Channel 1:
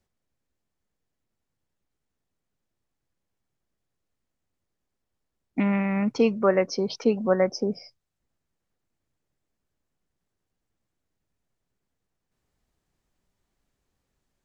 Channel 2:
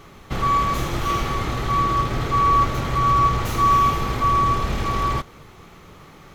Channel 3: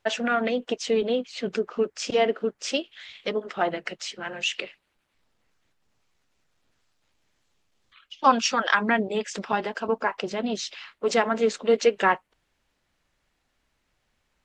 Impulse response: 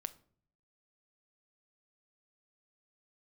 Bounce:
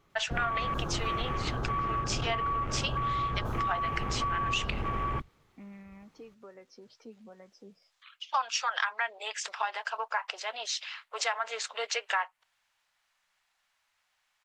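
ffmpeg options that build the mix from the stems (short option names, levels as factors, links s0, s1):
-filter_complex "[0:a]acompressor=threshold=0.0251:ratio=2.5,flanger=delay=5:depth=7.1:regen=45:speed=0.18:shape=triangular,volume=0.168[s0];[1:a]afwtdn=0.0398,acompressor=threshold=0.112:ratio=6,volume=0.501[s1];[2:a]highpass=f=780:w=0.5412,highpass=f=780:w=1.3066,adelay=100,volume=1.06[s2];[s0][s1][s2]amix=inputs=3:normalize=0,acompressor=threshold=0.0447:ratio=4"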